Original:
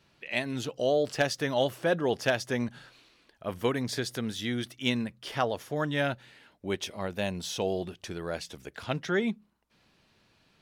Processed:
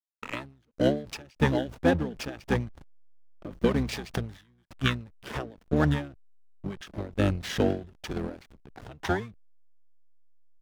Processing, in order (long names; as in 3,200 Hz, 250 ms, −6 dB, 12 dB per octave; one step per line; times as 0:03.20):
pitch-shifted copies added −12 semitones 0 dB
rotating-speaker cabinet horn 6.7 Hz, later 0.8 Hz, at 0:05.16
slack as between gear wheels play −35.5 dBFS
every ending faded ahead of time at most 130 dB per second
level +6 dB